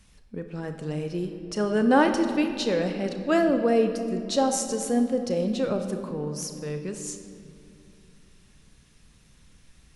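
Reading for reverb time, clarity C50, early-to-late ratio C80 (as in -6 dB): 2.6 s, 7.5 dB, 8.5 dB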